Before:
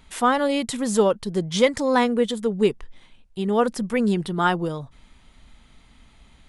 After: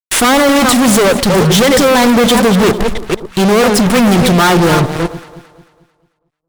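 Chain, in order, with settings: chunks repeated in reverse 242 ms, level -13 dB; fuzz box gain 41 dB, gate -39 dBFS; echo whose repeats swap between lows and highs 111 ms, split 1.1 kHz, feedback 64%, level -12 dB; trim +5.5 dB

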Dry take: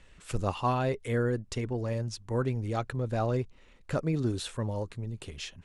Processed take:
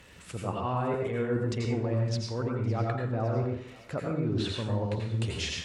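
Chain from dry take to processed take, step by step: crackle 220 per s -53 dBFS; low-pass that closes with the level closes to 2 kHz, closed at -26 dBFS; reverse; compression 6:1, threshold -37 dBFS, peak gain reduction 13.5 dB; reverse; high-pass 74 Hz; on a send: thinning echo 560 ms, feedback 63%, high-pass 960 Hz, level -18.5 dB; on the sum: plate-style reverb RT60 0.56 s, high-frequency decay 0.8×, pre-delay 75 ms, DRR -0.5 dB; trim +7 dB

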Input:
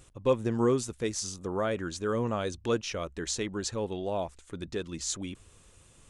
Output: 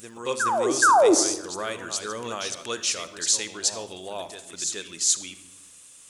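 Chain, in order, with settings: tilt EQ +4.5 dB/octave; painted sound fall, 0.82–1.15 s, 290–1700 Hz -16 dBFS; reverse echo 424 ms -7.5 dB; on a send at -12 dB: reverberation RT60 0.90 s, pre-delay 43 ms

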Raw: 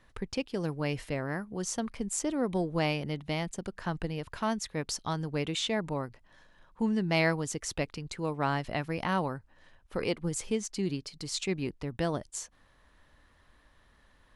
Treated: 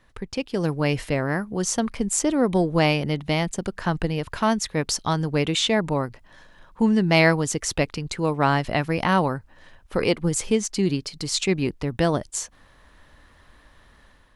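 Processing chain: level rider gain up to 7 dB; trim +2.5 dB

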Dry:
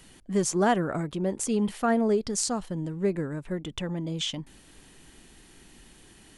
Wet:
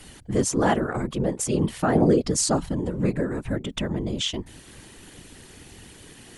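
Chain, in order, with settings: 1.95–3.56 s: comb 4.2 ms, depth 86%; in parallel at +2 dB: compression, threshold -35 dBFS, peak gain reduction 17 dB; on the sum: whisper effect

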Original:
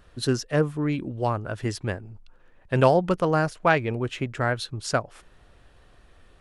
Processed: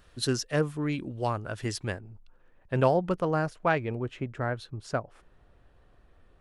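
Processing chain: de-esser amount 40%; treble shelf 2.2 kHz +6 dB, from 1.99 s -5 dB, from 4.01 s -11 dB; trim -4.5 dB

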